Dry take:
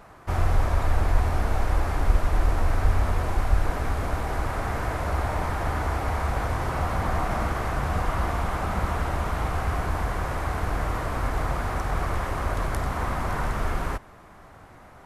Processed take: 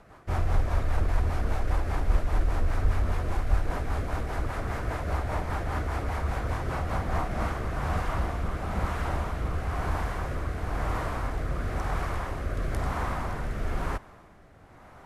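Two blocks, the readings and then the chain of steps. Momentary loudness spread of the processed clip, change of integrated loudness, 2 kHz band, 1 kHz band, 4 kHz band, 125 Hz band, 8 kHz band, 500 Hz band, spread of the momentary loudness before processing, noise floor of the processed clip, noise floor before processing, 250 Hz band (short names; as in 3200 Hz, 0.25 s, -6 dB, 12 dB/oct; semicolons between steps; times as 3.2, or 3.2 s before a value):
4 LU, -3.5 dB, -4.5 dB, -5.0 dB, -4.5 dB, -3.0 dB, -6.0 dB, -3.5 dB, 4 LU, -52 dBFS, -49 dBFS, -3.0 dB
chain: rotary speaker horn 5 Hz, later 1 Hz, at 6.94; high shelf 7900 Hz -4 dB; in parallel at -6 dB: soft clip -18.5 dBFS, distortion -14 dB; on the sum: gain -4.5 dB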